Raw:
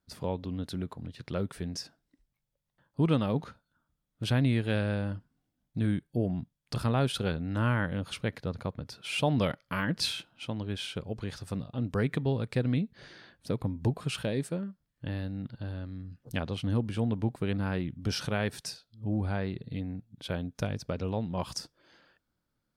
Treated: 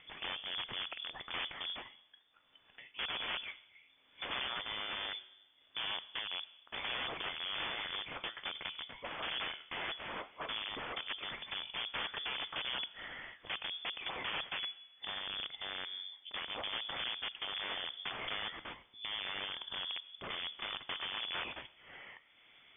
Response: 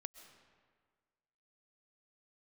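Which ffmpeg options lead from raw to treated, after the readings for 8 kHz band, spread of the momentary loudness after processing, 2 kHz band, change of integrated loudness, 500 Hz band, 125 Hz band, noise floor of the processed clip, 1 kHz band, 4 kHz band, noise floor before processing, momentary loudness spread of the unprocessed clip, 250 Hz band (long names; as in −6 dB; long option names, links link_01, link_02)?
below −35 dB, 8 LU, −0.5 dB, −7.0 dB, −15.5 dB, −31.0 dB, −67 dBFS, −4.0 dB, +3.5 dB, −82 dBFS, 12 LU, −25.0 dB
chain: -filter_complex "[0:a]flanger=delay=6.9:depth=7.2:regen=-75:speed=1.1:shape=triangular,acompressor=threshold=-36dB:ratio=16,lowshelf=frequency=320:gain=-9.5,acompressor=mode=upward:threshold=-52dB:ratio=2.5,aeval=exprs='(mod(126*val(0)+1,2)-1)/126':channel_layout=same,highpass=frequency=210:poles=1,highshelf=frequency=2800:gain=9,asplit=2[link_01][link_02];[1:a]atrim=start_sample=2205,asetrate=74970,aresample=44100,lowshelf=frequency=450:gain=12[link_03];[link_02][link_03]afir=irnorm=-1:irlink=0,volume=1.5dB[link_04];[link_01][link_04]amix=inputs=2:normalize=0,lowpass=frequency=3100:width_type=q:width=0.5098,lowpass=frequency=3100:width_type=q:width=0.6013,lowpass=frequency=3100:width_type=q:width=0.9,lowpass=frequency=3100:width_type=q:width=2.563,afreqshift=-3600,volume=5.5dB"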